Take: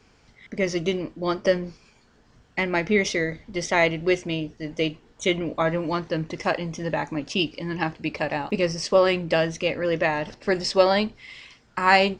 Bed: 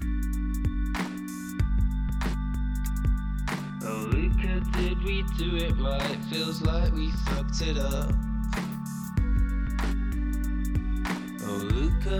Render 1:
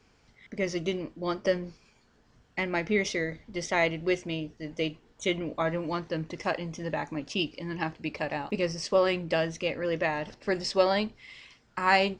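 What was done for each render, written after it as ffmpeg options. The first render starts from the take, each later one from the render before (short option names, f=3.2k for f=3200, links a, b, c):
-af "volume=-5.5dB"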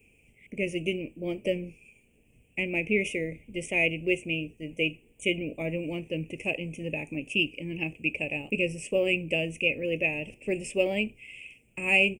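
-af "firequalizer=gain_entry='entry(500,0);entry(1000,-21);entry(1500,-27);entry(2500,15);entry(4000,-30);entry(8700,14)':delay=0.05:min_phase=1"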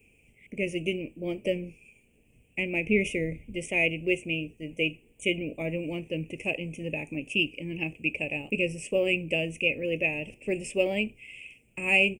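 -filter_complex "[0:a]asettb=1/sr,asplit=3[a][b][c];[a]atrim=end=2.864[d];[b]atrim=start=2.86:end=3.55,asetpts=PTS-STARTPTS,afade=t=in:d=0.004:c=qsin,afade=t=out:st=0.686:d=0.004:c=qsin,lowshelf=f=180:g=8.5[e];[c]atrim=start=3.546[f];[d][e]acrossfade=d=0.004:c1=hsin:c2=qsin[g];[g][f]acrossfade=d=0.004:c1=qsin:c2=hsin"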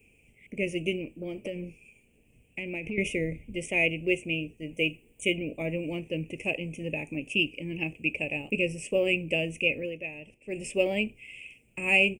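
-filter_complex "[0:a]asettb=1/sr,asplit=3[a][b][c];[a]atrim=end=1.034[d];[b]atrim=start=1.03:end=2.98,asetpts=PTS-STARTPTS,afade=t=in:d=0.004:c=qsin,afade=t=out:st=1.946:d=0.004:c=qsin,acompressor=threshold=-31dB:ratio=6:attack=3.2:release=140:knee=1:detection=peak[e];[c]atrim=start=2.976[f];[d][e]acrossfade=d=0.004:c1=hsin:c2=qsin[g];[g][f]acrossfade=d=0.004:c1=qsin:c2=hsin,asettb=1/sr,asplit=3[h][i][j];[h]atrim=end=4.744[k];[i]atrim=start=4.74:end=5.34,asetpts=PTS-STARTPTS,afade=t=in:d=0.004:c=qsin,afade=t=out:st=0.596:d=0.004:c=qsin,highshelf=f=8.7k:g=6[l];[j]atrim=start=5.336[m];[k][l]acrossfade=d=0.004:c1=hsin:c2=qsin[n];[n][m]acrossfade=d=0.004:c1=qsin:c2=hsin,asplit=3[o][p][q];[o]atrim=end=9.94,asetpts=PTS-STARTPTS,afade=t=out:st=9.79:d=0.15:silence=0.316228[r];[p]atrim=start=9.94:end=10.48,asetpts=PTS-STARTPTS,volume=-10dB[s];[q]atrim=start=10.48,asetpts=PTS-STARTPTS,afade=t=in:d=0.15:silence=0.316228[t];[r][s][t]concat=n=3:v=0:a=1"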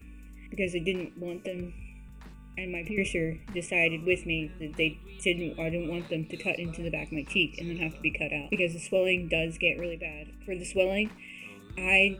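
-filter_complex "[1:a]volume=-19.5dB[a];[0:a][a]amix=inputs=2:normalize=0"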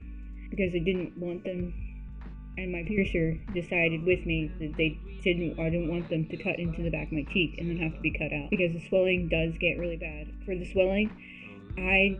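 -af "lowpass=2.8k,lowshelf=f=240:g=7"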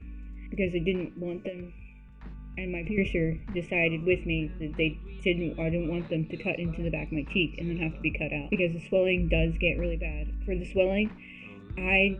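-filter_complex "[0:a]asettb=1/sr,asplit=3[a][b][c];[a]atrim=end=1.494[d];[b]atrim=start=1.49:end=2.23,asetpts=PTS-STARTPTS,afade=t=in:d=0.004:c=qsin,afade=t=out:st=0.736:d=0.004:c=qsin,lowshelf=f=420:g=-9.5[e];[c]atrim=start=2.226[f];[d][e]acrossfade=d=0.004:c1=hsin:c2=qsin[g];[g][f]acrossfade=d=0.004:c1=qsin:c2=hsin,asettb=1/sr,asplit=3[h][i][j];[h]atrim=end=9.194[k];[i]atrim=start=9.19:end=10.6,asetpts=PTS-STARTPTS,afade=t=in:d=0.004:c=qsin,afade=t=out:st=1.406:d=0.004:c=qsin,lowshelf=f=94:g=10.5[l];[j]atrim=start=10.596[m];[k][l]acrossfade=d=0.004:c1=hsin:c2=qsin[n];[n][m]acrossfade=d=0.004:c1=qsin:c2=hsin"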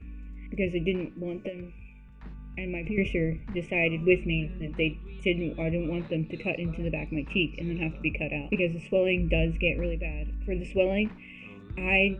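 -filter_complex "[0:a]asettb=1/sr,asplit=3[a][b][c];[a]atrim=end=3.964[d];[b]atrim=start=3.96:end=4.68,asetpts=PTS-STARTPTS,afade=t=in:d=0.004:c=qsin,afade=t=out:st=0.716:d=0.004:c=qsin,aecho=1:1:5.1:0.65,atrim=end_sample=31752[e];[c]atrim=start=4.676[f];[d][e]acrossfade=d=0.004:c1=hsin:c2=qsin[g];[g][f]acrossfade=d=0.004:c1=qsin:c2=hsin"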